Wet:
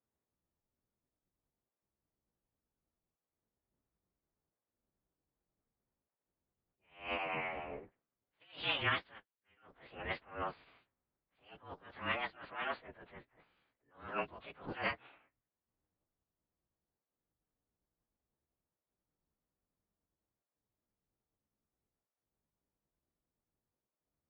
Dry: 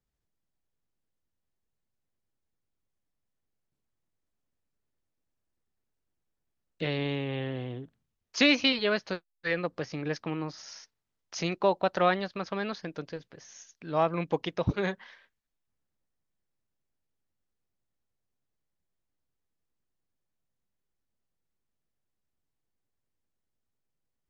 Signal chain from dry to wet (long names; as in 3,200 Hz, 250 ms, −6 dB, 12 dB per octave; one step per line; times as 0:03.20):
partials spread apart or drawn together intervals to 108%
low-pass filter 3,600 Hz 12 dB per octave
low-pass that shuts in the quiet parts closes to 1,300 Hz, open at −26.5 dBFS
gate on every frequency bin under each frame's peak −10 dB weak
phase-vocoder pitch shift with formants kept −10.5 semitones
level that may rise only so fast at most 150 dB per second
level +7 dB